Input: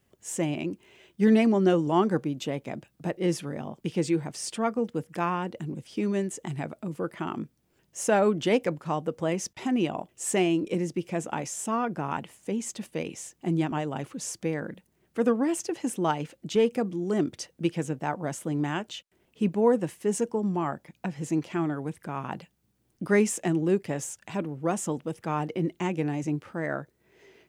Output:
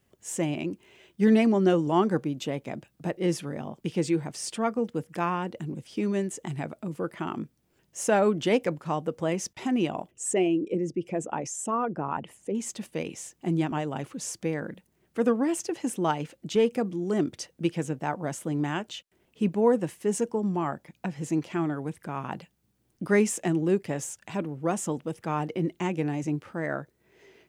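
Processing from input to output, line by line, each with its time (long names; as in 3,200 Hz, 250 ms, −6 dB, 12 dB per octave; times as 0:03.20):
0:10.11–0:12.55: spectral envelope exaggerated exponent 1.5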